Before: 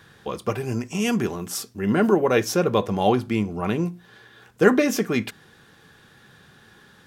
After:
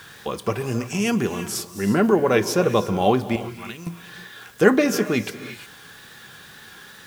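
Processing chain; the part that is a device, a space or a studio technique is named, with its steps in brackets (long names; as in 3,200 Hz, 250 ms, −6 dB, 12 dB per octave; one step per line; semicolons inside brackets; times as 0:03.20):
0:03.36–0:03.87: guitar amp tone stack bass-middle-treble 5-5-5
reverb whose tail is shaped and stops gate 380 ms rising, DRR 12 dB
noise-reduction cassette on a plain deck (one half of a high-frequency compander encoder only; tape wow and flutter; white noise bed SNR 31 dB)
level +1 dB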